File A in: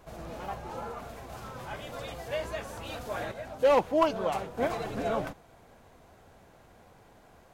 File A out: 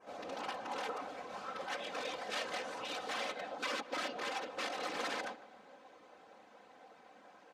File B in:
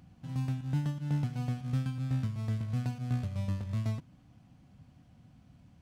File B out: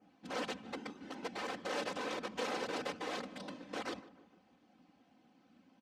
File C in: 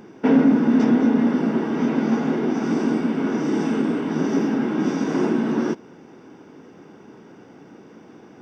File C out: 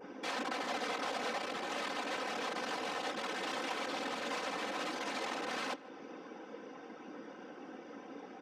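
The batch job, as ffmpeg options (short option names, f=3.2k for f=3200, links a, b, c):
-filter_complex "[0:a]aeval=exprs='0.531*(cos(1*acos(clip(val(0)/0.531,-1,1)))-cos(1*PI/2))+0.075*(cos(2*acos(clip(val(0)/0.531,-1,1)))-cos(2*PI/2))+0.00422*(cos(6*acos(clip(val(0)/0.531,-1,1)))-cos(6*PI/2))+0.0376*(cos(8*acos(clip(val(0)/0.531,-1,1)))-cos(8*PI/2))':c=same,adynamicequalizer=threshold=0.00316:dfrequency=3800:dqfactor=1.5:tfrequency=3800:tqfactor=1.5:attack=5:release=100:ratio=0.375:range=2:mode=boostabove:tftype=bell,acompressor=threshold=-32dB:ratio=5,flanger=delay=15.5:depth=2.4:speed=0.58,aeval=exprs='(mod(47.3*val(0)+1,2)-1)/47.3':c=same,afftfilt=real='hypot(re,im)*cos(2*PI*random(0))':imag='hypot(re,im)*sin(2*PI*random(1))':win_size=512:overlap=0.75,highpass=340,lowpass=5.2k,aecho=1:1:3.9:0.52,asplit=2[a][b];[b]adelay=150,lowpass=f=1.8k:p=1,volume=-16.5dB,asplit=2[c][d];[d]adelay=150,lowpass=f=1.8k:p=1,volume=0.53,asplit=2[e][f];[f]adelay=150,lowpass=f=1.8k:p=1,volume=0.53,asplit=2[g][h];[h]adelay=150,lowpass=f=1.8k:p=1,volume=0.53,asplit=2[i][j];[j]adelay=150,lowpass=f=1.8k:p=1,volume=0.53[k];[c][e][g][i][k]amix=inputs=5:normalize=0[l];[a][l]amix=inputs=2:normalize=0,volume=7.5dB"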